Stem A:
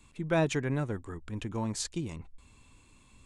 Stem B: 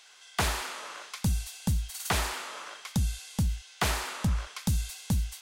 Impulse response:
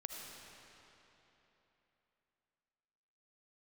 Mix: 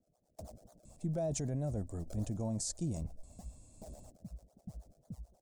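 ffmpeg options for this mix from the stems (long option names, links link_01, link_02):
-filter_complex "[0:a]asoftclip=type=hard:threshold=-19dB,adelay=850,volume=2dB[link_01];[1:a]acrusher=samples=32:mix=1:aa=0.000001:lfo=1:lforange=32:lforate=3.9,acrossover=split=430[link_02][link_03];[link_02]aeval=exprs='val(0)*(1-1/2+1/2*cos(2*PI*9.2*n/s))':channel_layout=same[link_04];[link_03]aeval=exprs='val(0)*(1-1/2-1/2*cos(2*PI*9.2*n/s))':channel_layout=same[link_05];[link_04][link_05]amix=inputs=2:normalize=0,volume=-16dB[link_06];[link_01][link_06]amix=inputs=2:normalize=0,firequalizer=gain_entry='entry(190,0);entry(400,-8);entry(640,6);entry(940,-14);entry(1400,-19);entry(2100,-20);entry(3000,-19);entry(5100,-2);entry(8200,3);entry(12000,-3)':delay=0.05:min_phase=1,alimiter=level_in=4dB:limit=-24dB:level=0:latency=1:release=16,volume=-4dB"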